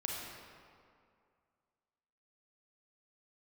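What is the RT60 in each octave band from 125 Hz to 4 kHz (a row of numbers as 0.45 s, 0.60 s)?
2.2 s, 2.3 s, 2.3 s, 2.3 s, 1.8 s, 1.4 s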